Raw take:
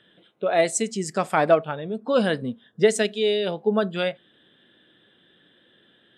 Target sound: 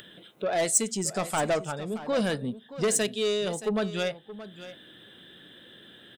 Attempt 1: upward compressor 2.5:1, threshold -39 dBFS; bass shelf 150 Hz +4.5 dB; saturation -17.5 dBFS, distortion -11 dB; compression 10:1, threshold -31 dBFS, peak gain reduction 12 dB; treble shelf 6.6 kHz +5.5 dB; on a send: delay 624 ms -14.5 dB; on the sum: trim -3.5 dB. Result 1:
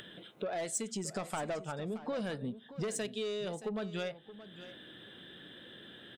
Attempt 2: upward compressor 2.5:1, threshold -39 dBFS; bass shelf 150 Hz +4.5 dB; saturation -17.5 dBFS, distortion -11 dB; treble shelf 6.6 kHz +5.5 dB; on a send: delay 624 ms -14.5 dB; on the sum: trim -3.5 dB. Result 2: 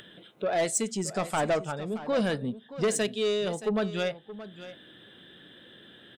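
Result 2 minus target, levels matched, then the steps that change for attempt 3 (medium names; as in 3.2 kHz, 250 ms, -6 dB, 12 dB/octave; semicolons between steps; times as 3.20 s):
8 kHz band -4.5 dB
change: treble shelf 6.6 kHz +15 dB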